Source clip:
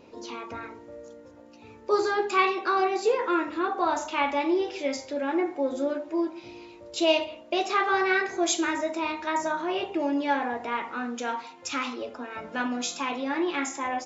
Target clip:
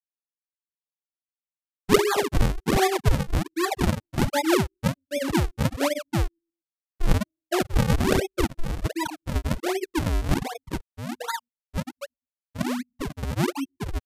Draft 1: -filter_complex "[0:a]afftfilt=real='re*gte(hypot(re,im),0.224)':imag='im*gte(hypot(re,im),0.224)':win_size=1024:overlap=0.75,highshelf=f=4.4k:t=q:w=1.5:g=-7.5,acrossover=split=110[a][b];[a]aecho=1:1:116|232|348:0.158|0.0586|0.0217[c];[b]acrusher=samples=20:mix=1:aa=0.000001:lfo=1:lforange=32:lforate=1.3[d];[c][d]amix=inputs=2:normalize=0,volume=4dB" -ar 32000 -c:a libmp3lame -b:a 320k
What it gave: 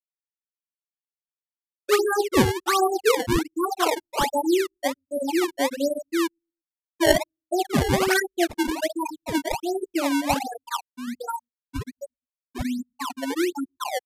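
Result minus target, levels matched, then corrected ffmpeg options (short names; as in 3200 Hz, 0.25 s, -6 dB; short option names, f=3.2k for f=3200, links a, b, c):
decimation with a swept rate: distortion -16 dB
-filter_complex "[0:a]afftfilt=real='re*gte(hypot(re,im),0.224)':imag='im*gte(hypot(re,im),0.224)':win_size=1024:overlap=0.75,highshelf=f=4.4k:t=q:w=1.5:g=-7.5,acrossover=split=110[a][b];[a]aecho=1:1:116|232|348:0.158|0.0586|0.0217[c];[b]acrusher=samples=74:mix=1:aa=0.000001:lfo=1:lforange=118:lforate=1.3[d];[c][d]amix=inputs=2:normalize=0,volume=4dB" -ar 32000 -c:a libmp3lame -b:a 320k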